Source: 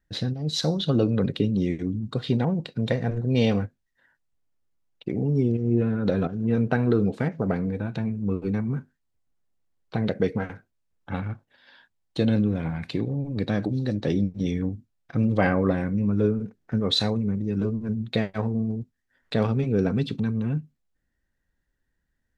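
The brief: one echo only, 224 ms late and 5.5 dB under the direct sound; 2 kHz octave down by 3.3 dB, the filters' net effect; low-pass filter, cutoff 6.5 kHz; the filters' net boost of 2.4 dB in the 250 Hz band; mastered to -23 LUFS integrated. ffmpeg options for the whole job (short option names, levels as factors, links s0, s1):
-af "lowpass=6500,equalizer=f=250:t=o:g=3,equalizer=f=2000:t=o:g=-4.5,aecho=1:1:224:0.531,volume=1.06"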